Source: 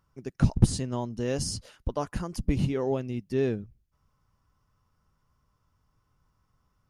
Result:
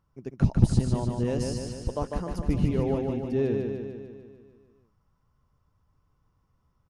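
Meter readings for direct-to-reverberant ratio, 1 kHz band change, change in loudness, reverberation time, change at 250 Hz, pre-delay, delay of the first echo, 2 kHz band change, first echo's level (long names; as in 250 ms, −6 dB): no reverb audible, 0.0 dB, +1.5 dB, no reverb audible, +2.5 dB, no reverb audible, 149 ms, −2.5 dB, −4.0 dB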